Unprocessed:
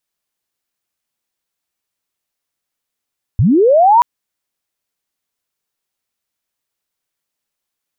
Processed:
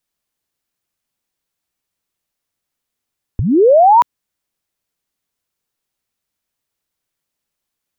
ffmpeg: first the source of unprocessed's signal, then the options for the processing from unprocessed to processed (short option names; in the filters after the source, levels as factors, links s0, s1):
-f lavfi -i "aevalsrc='pow(10,(-8+3*t/0.63)/20)*sin(2*PI*(84*t+906*t*t/(2*0.63)))':d=0.63:s=44100"
-filter_complex "[0:a]lowshelf=f=300:g=6,acrossover=split=330[s0][s1];[s0]acompressor=threshold=0.126:ratio=6[s2];[s2][s1]amix=inputs=2:normalize=0"